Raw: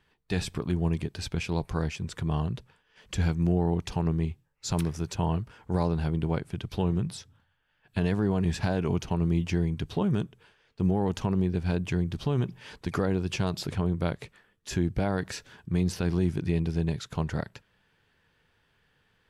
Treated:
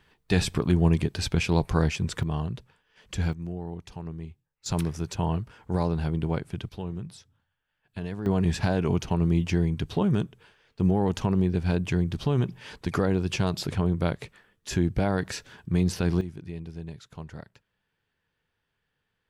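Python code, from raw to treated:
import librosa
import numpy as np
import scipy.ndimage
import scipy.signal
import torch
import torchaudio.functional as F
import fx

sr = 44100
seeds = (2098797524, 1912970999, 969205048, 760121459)

y = fx.gain(x, sr, db=fx.steps((0.0, 6.0), (2.23, -1.0), (3.33, -10.0), (4.66, 0.5), (6.69, -7.5), (8.26, 2.5), (16.21, -10.5)))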